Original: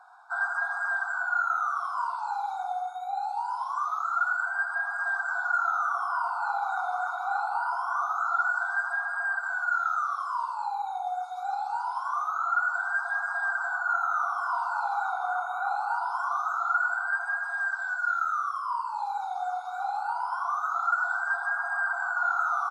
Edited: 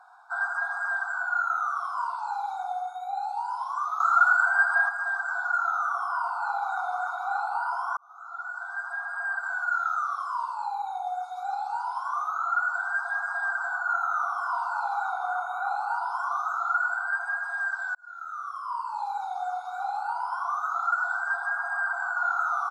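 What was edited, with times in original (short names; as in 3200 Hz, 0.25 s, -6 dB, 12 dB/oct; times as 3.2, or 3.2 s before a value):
4–4.89 gain +7 dB
7.97–9.47 fade in
17.95–18.92 fade in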